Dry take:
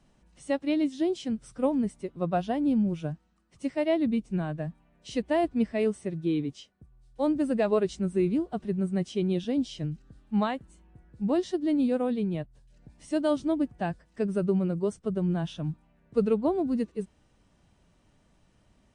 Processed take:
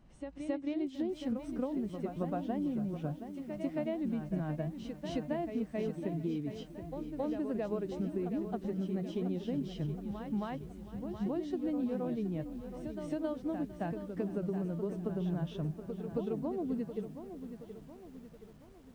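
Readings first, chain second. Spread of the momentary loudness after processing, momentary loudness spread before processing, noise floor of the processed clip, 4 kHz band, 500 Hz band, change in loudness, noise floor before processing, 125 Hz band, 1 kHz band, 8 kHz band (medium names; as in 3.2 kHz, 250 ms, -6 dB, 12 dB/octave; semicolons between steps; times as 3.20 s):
9 LU, 10 LU, -53 dBFS, -10.5 dB, -8.5 dB, -8.0 dB, -66 dBFS, -5.0 dB, -9.0 dB, no reading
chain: low-pass 1.9 kHz 6 dB/octave; bass shelf 120 Hz +4 dB; compression 16:1, threshold -32 dBFS, peak gain reduction 15 dB; on a send: reverse echo 270 ms -7 dB; on the sum: bit-crushed delay 723 ms, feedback 55%, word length 10-bit, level -10 dB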